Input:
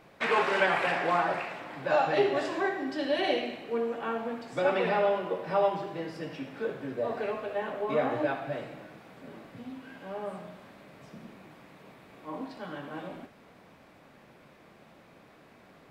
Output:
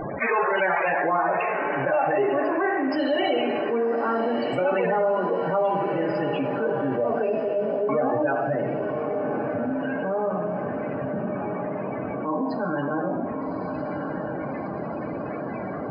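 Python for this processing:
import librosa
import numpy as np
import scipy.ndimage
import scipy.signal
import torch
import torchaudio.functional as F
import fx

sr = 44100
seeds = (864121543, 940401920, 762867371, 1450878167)

p1 = fx.spec_topn(x, sr, count=32)
p2 = fx.brickwall_bandstop(p1, sr, low_hz=720.0, high_hz=2300.0, at=(7.22, 7.89))
p3 = p2 + fx.echo_diffused(p2, sr, ms=1238, feedback_pct=44, wet_db=-14, dry=0)
p4 = fx.rev_double_slope(p3, sr, seeds[0], early_s=0.78, late_s=2.5, knee_db=-18, drr_db=11.5)
y = fx.env_flatten(p4, sr, amount_pct=70)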